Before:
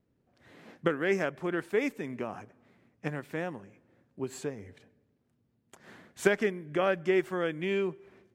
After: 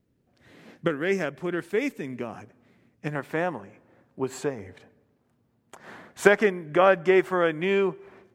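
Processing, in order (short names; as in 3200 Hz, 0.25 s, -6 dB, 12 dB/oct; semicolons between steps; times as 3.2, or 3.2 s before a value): bell 930 Hz -4 dB 1.9 oct, from 3.15 s +7.5 dB; gain +4 dB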